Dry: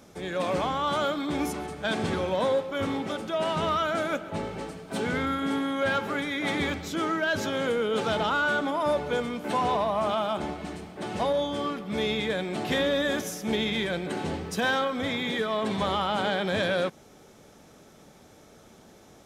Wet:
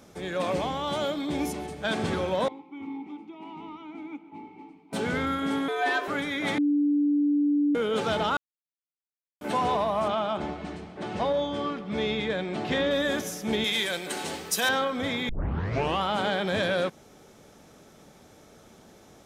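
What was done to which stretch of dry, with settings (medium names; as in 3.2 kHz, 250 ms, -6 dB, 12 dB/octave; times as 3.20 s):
0.52–1.82 s: peaking EQ 1.3 kHz -9 dB 0.61 oct
2.48–4.93 s: vowel filter u
5.68–6.08 s: frequency shift +170 Hz
6.58–7.75 s: bleep 291 Hz -20 dBFS
8.37–9.41 s: mute
10.08–12.91 s: distance through air 77 m
13.64–14.69 s: RIAA curve recording
15.29 s: tape start 0.73 s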